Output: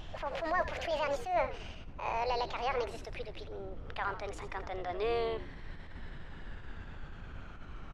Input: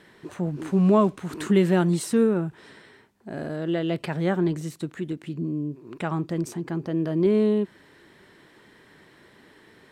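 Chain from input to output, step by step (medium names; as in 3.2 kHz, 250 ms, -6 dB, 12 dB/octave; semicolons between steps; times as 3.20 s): gliding tape speed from 178% -> 72%; high-pass 660 Hz 24 dB/octave; treble shelf 2.7 kHz +11.5 dB; peak limiter -21 dBFS, peak gain reduction 13 dB; added noise brown -46 dBFS; tape spacing loss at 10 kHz 31 dB; frequency-shifting echo 84 ms, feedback 37%, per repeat -88 Hz, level -13.5 dB; attacks held to a fixed rise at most 110 dB/s; trim +3.5 dB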